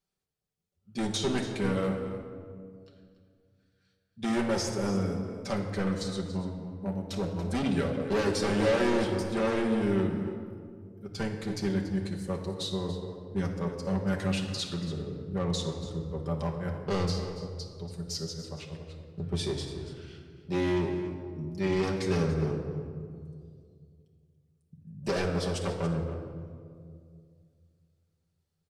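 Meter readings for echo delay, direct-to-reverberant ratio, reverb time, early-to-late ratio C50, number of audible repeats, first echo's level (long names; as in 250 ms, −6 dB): 284 ms, −1.0 dB, 2.2 s, 5.0 dB, 1, −13.0 dB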